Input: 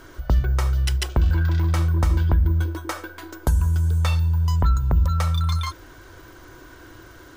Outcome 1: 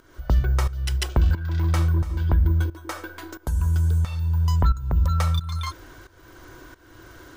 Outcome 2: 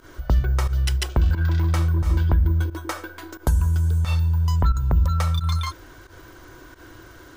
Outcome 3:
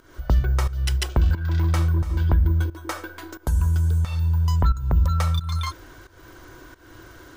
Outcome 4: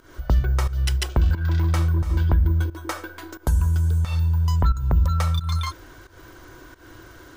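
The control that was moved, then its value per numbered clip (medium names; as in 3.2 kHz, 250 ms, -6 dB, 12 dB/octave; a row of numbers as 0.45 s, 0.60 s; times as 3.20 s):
volume shaper, release: 515 ms, 91 ms, 320 ms, 210 ms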